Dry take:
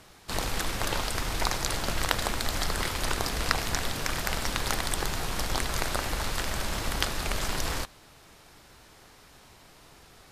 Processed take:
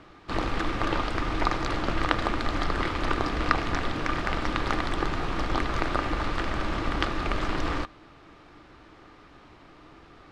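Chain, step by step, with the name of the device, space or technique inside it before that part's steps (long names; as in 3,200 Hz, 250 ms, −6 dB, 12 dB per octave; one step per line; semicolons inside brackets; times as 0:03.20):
inside a cardboard box (low-pass filter 2,800 Hz 12 dB per octave; hollow resonant body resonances 310/1,200 Hz, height 10 dB, ringing for 45 ms)
level +2 dB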